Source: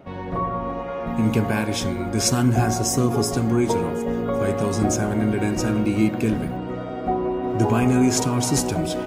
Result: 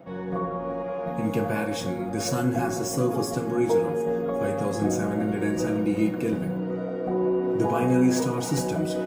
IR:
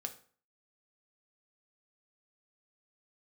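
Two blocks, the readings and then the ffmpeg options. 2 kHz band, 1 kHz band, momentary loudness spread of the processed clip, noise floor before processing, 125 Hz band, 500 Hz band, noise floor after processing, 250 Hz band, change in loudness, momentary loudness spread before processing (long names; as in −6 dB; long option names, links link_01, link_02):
−4.0 dB, −5.0 dB, 7 LU, −31 dBFS, −7.0 dB, −1.0 dB, −32 dBFS, −4.0 dB, −4.0 dB, 8 LU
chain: -filter_complex "[0:a]acrossover=split=800|5600[link_01][link_02][link_03];[link_03]asoftclip=type=tanh:threshold=-27dB[link_04];[link_01][link_02][link_04]amix=inputs=3:normalize=0,highpass=frequency=180:poles=1,equalizer=frequency=4500:width=0.31:gain=-6.5,aecho=1:1:6:0.44[link_05];[1:a]atrim=start_sample=2205[link_06];[link_05][link_06]afir=irnorm=-1:irlink=0,areverse,acompressor=mode=upward:threshold=-31dB:ratio=2.5,areverse"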